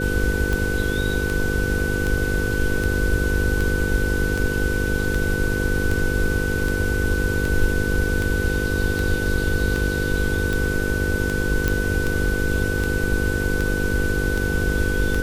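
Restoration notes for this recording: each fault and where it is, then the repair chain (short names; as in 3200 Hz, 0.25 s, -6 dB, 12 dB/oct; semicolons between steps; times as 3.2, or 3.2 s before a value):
buzz 50 Hz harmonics 10 -26 dBFS
tick 78 rpm
tone 1500 Hz -26 dBFS
11.68 pop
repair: de-click; de-hum 50 Hz, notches 10; notch 1500 Hz, Q 30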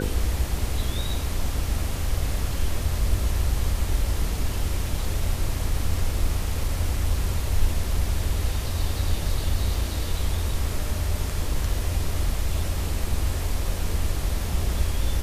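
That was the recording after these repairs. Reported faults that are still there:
none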